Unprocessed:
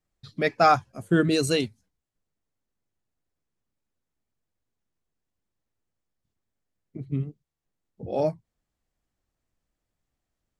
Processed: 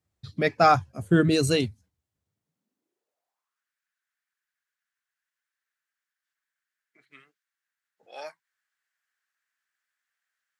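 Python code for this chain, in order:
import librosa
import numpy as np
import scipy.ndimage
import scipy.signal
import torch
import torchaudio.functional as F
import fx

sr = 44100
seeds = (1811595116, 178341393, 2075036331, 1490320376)

y = fx.filter_sweep_highpass(x, sr, from_hz=83.0, to_hz=1600.0, start_s=2.21, end_s=3.65, q=4.5)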